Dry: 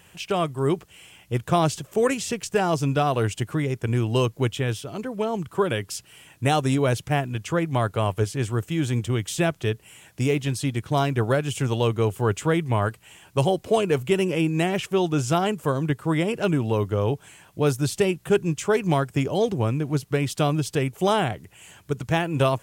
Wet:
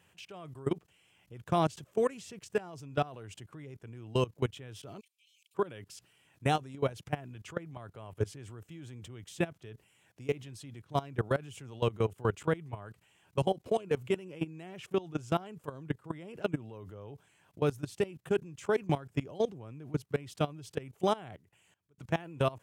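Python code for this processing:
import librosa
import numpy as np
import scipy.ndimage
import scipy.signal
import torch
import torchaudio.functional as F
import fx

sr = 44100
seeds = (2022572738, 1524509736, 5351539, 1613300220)

y = fx.steep_highpass(x, sr, hz=2300.0, slope=96, at=(4.99, 5.54), fade=0.02)
y = fx.edit(y, sr, fx.fade_out_span(start_s=21.11, length_s=0.87), tone=tone)
y = fx.level_steps(y, sr, step_db=20)
y = scipy.signal.sosfilt(scipy.signal.butter(2, 67.0, 'highpass', fs=sr, output='sos'), y)
y = fx.high_shelf(y, sr, hz=4600.0, db=-6.0)
y = y * 10.0 ** (-5.5 / 20.0)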